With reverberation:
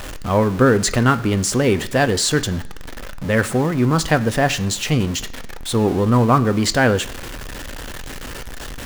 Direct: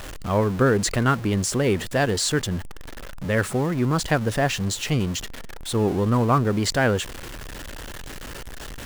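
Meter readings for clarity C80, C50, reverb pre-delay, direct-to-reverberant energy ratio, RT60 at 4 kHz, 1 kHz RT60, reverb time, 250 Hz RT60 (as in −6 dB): 20.0 dB, 17.5 dB, 3 ms, 10.5 dB, 0.95 s, 1.0 s, 1.0 s, 0.90 s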